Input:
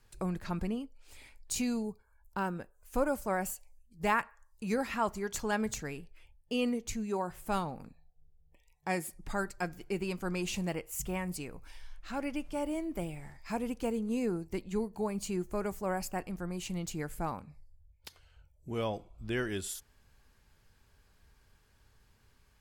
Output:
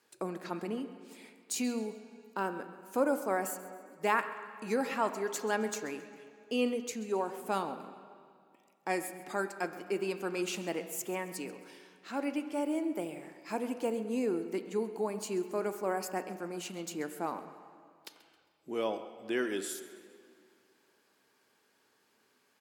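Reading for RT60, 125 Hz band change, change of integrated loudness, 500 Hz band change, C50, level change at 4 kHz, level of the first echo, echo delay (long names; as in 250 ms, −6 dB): 2.2 s, −9.0 dB, +0.5 dB, +2.5 dB, 10.0 dB, 0.0 dB, −17.0 dB, 134 ms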